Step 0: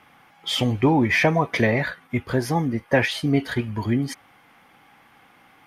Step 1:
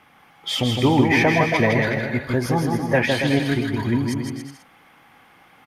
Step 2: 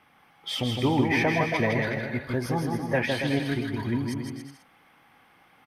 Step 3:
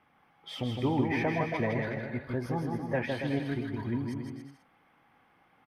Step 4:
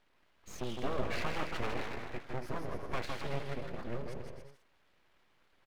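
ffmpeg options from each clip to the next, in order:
-af "aecho=1:1:160|280|370|437.5|488.1:0.631|0.398|0.251|0.158|0.1"
-af "bandreject=f=6.9k:w=7.5,volume=-6.5dB"
-af "highshelf=f=2.7k:g=-10.5,volume=-4.5dB"
-af "aeval=exprs='abs(val(0))':c=same,volume=-3.5dB"

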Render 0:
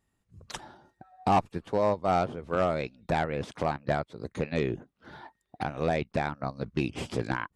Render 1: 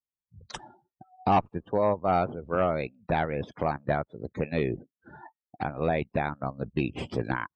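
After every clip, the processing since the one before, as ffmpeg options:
-af "afftdn=nr=32:nf=-44,volume=1dB"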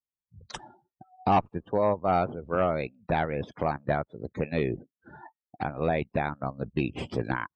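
-af anull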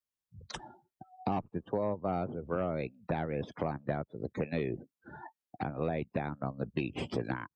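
-filter_complex "[0:a]acrossover=split=110|470[a][b][c];[a]acompressor=threshold=-50dB:ratio=4[d];[b]acompressor=threshold=-32dB:ratio=4[e];[c]acompressor=threshold=-38dB:ratio=4[f];[d][e][f]amix=inputs=3:normalize=0"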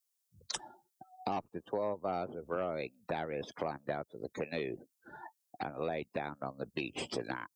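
-af "bass=f=250:g=-11,treble=f=4k:g=13,volume=-1dB"

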